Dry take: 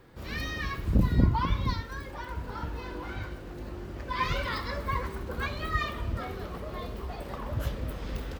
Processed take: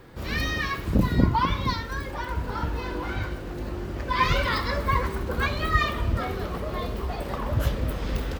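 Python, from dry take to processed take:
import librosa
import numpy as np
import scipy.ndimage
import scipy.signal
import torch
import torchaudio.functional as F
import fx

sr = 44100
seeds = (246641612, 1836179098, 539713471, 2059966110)

y = fx.low_shelf(x, sr, hz=150.0, db=-9.0, at=(0.61, 1.82))
y = y * librosa.db_to_amplitude(7.0)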